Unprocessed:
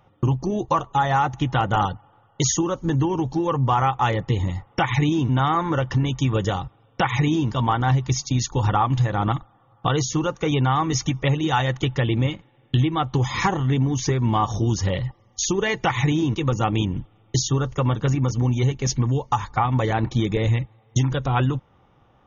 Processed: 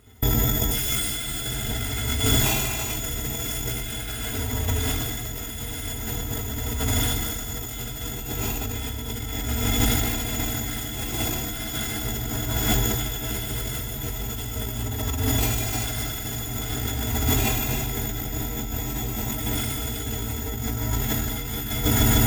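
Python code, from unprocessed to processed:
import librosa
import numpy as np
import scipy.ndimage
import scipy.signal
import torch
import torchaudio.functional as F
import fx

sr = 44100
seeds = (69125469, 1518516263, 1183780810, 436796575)

y = fx.bit_reversed(x, sr, seeds[0], block=256)
y = fx.low_shelf(y, sr, hz=310.0, db=5.5)
y = fx.formant_shift(y, sr, semitones=4)
y = fx.echo_swell(y, sr, ms=149, loudest=8, wet_db=-16.0)
y = fx.rev_gated(y, sr, seeds[1], gate_ms=470, shape='flat', drr_db=-7.5)
y = fx.over_compress(y, sr, threshold_db=-18.0, ratio=-0.5)
y = fx.high_shelf(y, sr, hz=4000.0, db=-11.0)
y = fx.notch_comb(y, sr, f0_hz=580.0)
y = fx.sustainer(y, sr, db_per_s=24.0)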